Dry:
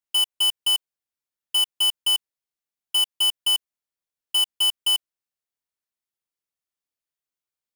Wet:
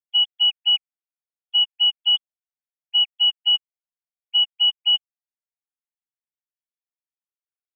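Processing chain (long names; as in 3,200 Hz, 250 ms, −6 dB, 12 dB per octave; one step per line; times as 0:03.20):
three sine waves on the formant tracks
frequency shifter −67 Hz
level +2.5 dB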